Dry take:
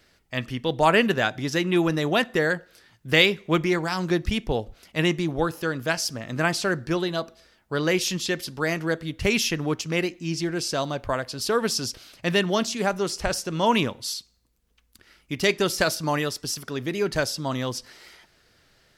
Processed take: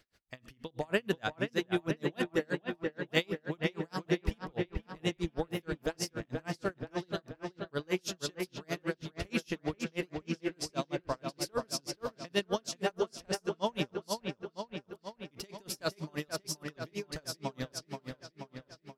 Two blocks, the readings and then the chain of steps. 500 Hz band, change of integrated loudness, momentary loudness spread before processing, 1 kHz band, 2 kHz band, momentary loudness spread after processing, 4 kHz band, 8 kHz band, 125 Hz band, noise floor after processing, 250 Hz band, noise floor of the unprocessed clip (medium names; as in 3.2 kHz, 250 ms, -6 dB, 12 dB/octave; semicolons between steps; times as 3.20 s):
-10.0 dB, -11.5 dB, 8 LU, -13.0 dB, -13.5 dB, 11 LU, -12.5 dB, -11.5 dB, -10.5 dB, -71 dBFS, -10.5 dB, -65 dBFS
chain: dynamic bell 2 kHz, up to -4 dB, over -35 dBFS, Q 1; on a send: feedback echo behind a low-pass 480 ms, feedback 64%, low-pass 3.1 kHz, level -4.5 dB; on the sum: logarithmic tremolo 6.3 Hz, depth 37 dB; trim -5.5 dB